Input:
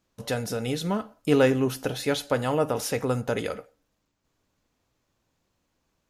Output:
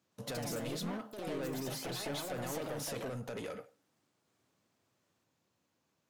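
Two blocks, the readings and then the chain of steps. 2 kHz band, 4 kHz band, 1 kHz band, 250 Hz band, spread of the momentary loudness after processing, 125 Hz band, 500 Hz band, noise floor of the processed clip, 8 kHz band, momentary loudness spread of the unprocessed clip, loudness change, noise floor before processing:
−13.0 dB, −8.5 dB, −12.5 dB, −14.0 dB, 4 LU, −13.0 dB, −15.0 dB, −80 dBFS, −7.0 dB, 9 LU, −13.5 dB, −76 dBFS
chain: high-pass filter 99 Hz 24 dB per octave
brickwall limiter −17.5 dBFS, peak gain reduction 9.5 dB
downward compressor, threshold −28 dBFS, peak gain reduction 6.5 dB
soft clipping −32.5 dBFS, distortion −9 dB
delay with pitch and tempo change per echo 115 ms, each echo +3 semitones, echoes 2
level −4 dB

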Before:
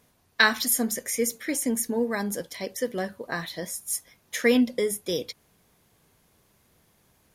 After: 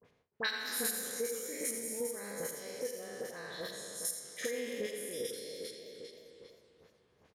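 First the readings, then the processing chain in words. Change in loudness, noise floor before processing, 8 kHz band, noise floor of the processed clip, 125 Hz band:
−11.5 dB, −65 dBFS, −8.5 dB, −71 dBFS, −15.5 dB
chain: peak hold with a decay on every bin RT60 2.42 s
square-wave tremolo 2.5 Hz, depth 65%, duty 15%
parametric band 470 Hz +10 dB 0.38 octaves
all-pass dispersion highs, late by 50 ms, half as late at 1,400 Hz
on a send: single-tap delay 84 ms −10.5 dB
on the sum: downward compressor 2 to 1, threshold −45 dBFS, peak gain reduction 18 dB
low-pass that shuts in the quiet parts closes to 2,300 Hz, open at −34 dBFS
high-pass filter 46 Hz
high-shelf EQ 2,700 Hz +8 dB
noise gate with hold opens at −58 dBFS
feedback echo with a swinging delay time 305 ms, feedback 56%, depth 218 cents, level −20 dB
level −4 dB

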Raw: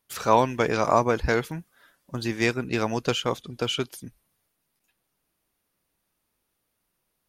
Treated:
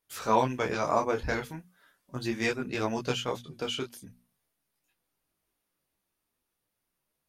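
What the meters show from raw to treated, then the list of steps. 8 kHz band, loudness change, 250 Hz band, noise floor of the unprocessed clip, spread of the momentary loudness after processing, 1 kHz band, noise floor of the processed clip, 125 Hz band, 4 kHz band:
−5.0 dB, −5.5 dB, −5.0 dB, −78 dBFS, 15 LU, −5.0 dB, −83 dBFS, −6.5 dB, −5.5 dB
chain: mains-hum notches 60/120/180/240 Hz
micro pitch shift up and down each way 13 cents
level −1.5 dB

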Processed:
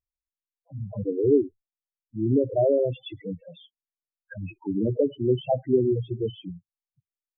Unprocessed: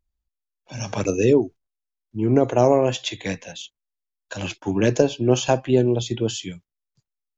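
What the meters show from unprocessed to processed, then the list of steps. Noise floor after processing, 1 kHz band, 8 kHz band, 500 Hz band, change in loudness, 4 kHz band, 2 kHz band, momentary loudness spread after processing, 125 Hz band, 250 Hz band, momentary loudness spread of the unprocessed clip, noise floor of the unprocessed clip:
below −85 dBFS, −10.5 dB, can't be measured, −4.0 dB, −4.0 dB, −14.0 dB, −17.0 dB, 18 LU, −5.5 dB, −4.5 dB, 19 LU, −84 dBFS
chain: noise reduction from a noise print of the clip's start 18 dB
low-pass filter 2,700 Hz 12 dB per octave
spectral peaks only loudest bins 4
level −1.5 dB

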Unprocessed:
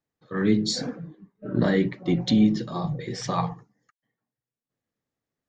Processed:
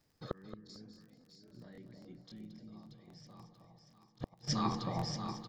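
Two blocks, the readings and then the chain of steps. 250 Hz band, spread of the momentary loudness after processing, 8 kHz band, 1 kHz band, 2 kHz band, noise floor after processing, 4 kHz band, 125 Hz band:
−19.0 dB, 22 LU, can't be measured, −8.5 dB, −19.5 dB, −70 dBFS, −12.0 dB, −14.0 dB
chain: in parallel at −3 dB: brickwall limiter −19 dBFS, peak gain reduction 9.5 dB
on the sum: parametric band 5,000 Hz +13 dB 0.25 octaves
delay that swaps between a low-pass and a high-pass 316 ms, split 840 Hz, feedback 63%, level −3 dB
gate with flip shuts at −25 dBFS, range −41 dB
low-shelf EQ 120 Hz +9 dB
on a send: repeating echo 224 ms, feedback 26%, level −10.5 dB
on the sum: surface crackle 28 per second −59 dBFS
regular buffer underruns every 0.27 s, samples 1,024, repeat, from 0:00.65
level +4 dB

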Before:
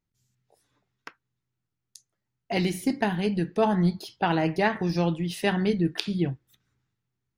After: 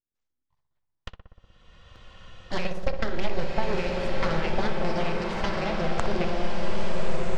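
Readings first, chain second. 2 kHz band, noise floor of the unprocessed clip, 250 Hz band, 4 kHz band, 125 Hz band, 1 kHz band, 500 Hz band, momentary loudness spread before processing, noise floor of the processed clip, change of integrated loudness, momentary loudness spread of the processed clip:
−0.5 dB, −84 dBFS, −6.5 dB, −1.0 dB, −4.5 dB, −1.0 dB, 0.0 dB, 5 LU, −81 dBFS, −3.5 dB, 7 LU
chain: loose part that buzzes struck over −25 dBFS, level −22 dBFS
noise gate −49 dBFS, range −15 dB
elliptic band-stop filter 570–1,200 Hz
low-shelf EQ 120 Hz −8.5 dB
downward compressor, threshold −28 dBFS, peak gain reduction 7.5 dB
transient designer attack +3 dB, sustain −8 dB
full-wave rectification
auto-filter notch square 3.3 Hz 280–2,500 Hz
high-frequency loss of the air 140 metres
on a send: feedback echo with a low-pass in the loop 61 ms, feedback 82%, low-pass 1,600 Hz, level −8 dB
on the sum: slow-attack reverb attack 1,370 ms, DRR −1 dB
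level +6 dB

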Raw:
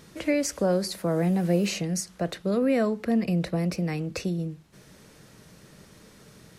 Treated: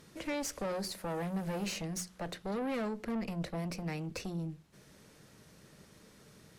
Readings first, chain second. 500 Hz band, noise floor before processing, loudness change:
−12.0 dB, −54 dBFS, −11.0 dB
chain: tube saturation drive 28 dB, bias 0.55
mains-hum notches 60/120/180 Hz
level −4 dB

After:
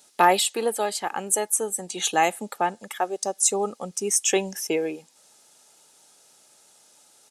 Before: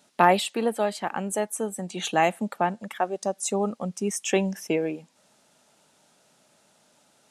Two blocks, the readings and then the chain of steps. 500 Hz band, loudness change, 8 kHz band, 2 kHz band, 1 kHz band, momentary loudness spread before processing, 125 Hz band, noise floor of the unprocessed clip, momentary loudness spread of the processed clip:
0.0 dB, +2.5 dB, +10.0 dB, +1.0 dB, +1.5 dB, 9 LU, −7.5 dB, −63 dBFS, 9 LU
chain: bass and treble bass −6 dB, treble +10 dB
comb filter 2.4 ms, depth 32%

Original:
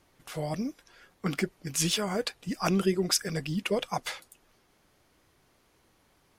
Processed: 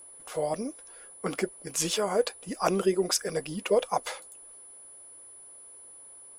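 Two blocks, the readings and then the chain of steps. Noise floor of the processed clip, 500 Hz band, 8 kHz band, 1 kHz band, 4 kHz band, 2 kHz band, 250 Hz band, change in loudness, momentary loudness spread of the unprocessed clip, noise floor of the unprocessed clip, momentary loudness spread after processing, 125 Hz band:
−49 dBFS, +5.0 dB, +1.0 dB, +3.5 dB, −2.0 dB, −2.0 dB, −3.0 dB, +1.0 dB, 10 LU, −67 dBFS, 20 LU, −6.5 dB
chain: steady tone 10,000 Hz −46 dBFS
graphic EQ with 10 bands 125 Hz −7 dB, 500 Hz +11 dB, 1,000 Hz +6 dB, 8,000 Hz +5 dB
level −4 dB

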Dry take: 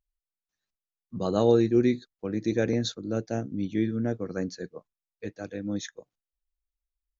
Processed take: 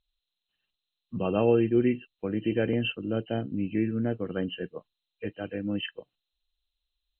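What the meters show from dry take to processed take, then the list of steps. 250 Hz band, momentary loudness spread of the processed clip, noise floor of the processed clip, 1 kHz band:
−0.5 dB, 15 LU, below −85 dBFS, −1.0 dB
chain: hearing-aid frequency compression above 2,400 Hz 4 to 1
in parallel at −0.5 dB: downward compressor, threshold −32 dBFS, peak gain reduction 15.5 dB
on the sum: level −3 dB

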